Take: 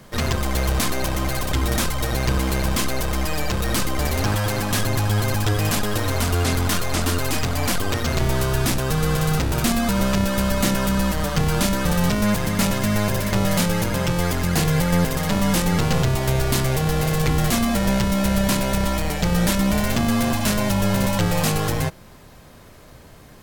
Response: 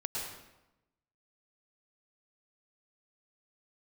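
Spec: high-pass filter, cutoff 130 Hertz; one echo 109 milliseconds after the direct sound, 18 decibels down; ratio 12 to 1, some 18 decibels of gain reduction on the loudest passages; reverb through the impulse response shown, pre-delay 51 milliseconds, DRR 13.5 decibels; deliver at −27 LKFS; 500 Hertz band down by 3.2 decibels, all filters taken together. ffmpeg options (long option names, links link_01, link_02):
-filter_complex "[0:a]highpass=130,equalizer=frequency=500:width_type=o:gain=-4,acompressor=threshold=-36dB:ratio=12,aecho=1:1:109:0.126,asplit=2[link_01][link_02];[1:a]atrim=start_sample=2205,adelay=51[link_03];[link_02][link_03]afir=irnorm=-1:irlink=0,volume=-16.5dB[link_04];[link_01][link_04]amix=inputs=2:normalize=0,volume=12dB"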